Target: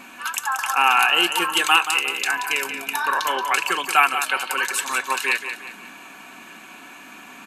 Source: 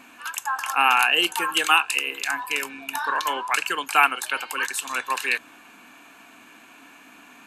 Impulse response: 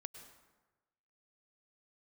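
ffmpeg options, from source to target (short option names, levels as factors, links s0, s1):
-filter_complex "[0:a]aecho=1:1:5.3:0.37,asplit=2[s0][s1];[s1]acompressor=threshold=0.0316:ratio=6,volume=1.19[s2];[s0][s2]amix=inputs=2:normalize=0,aecho=1:1:179|358|537|716:0.355|0.138|0.054|0.021,volume=0.891"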